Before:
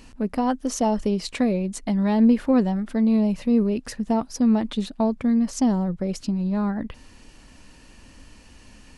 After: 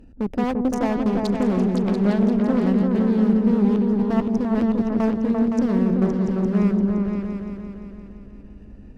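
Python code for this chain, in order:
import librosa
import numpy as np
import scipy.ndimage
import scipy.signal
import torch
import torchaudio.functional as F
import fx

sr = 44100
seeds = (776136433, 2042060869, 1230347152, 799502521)

y = fx.wiener(x, sr, points=41)
y = fx.level_steps(y, sr, step_db=13)
y = fx.clip_asym(y, sr, top_db=-32.5, bottom_db=-22.5)
y = fx.echo_opening(y, sr, ms=172, hz=400, octaves=2, feedback_pct=70, wet_db=0)
y = fx.doppler_dist(y, sr, depth_ms=0.32, at=(1.25, 2.67))
y = y * librosa.db_to_amplitude(6.5)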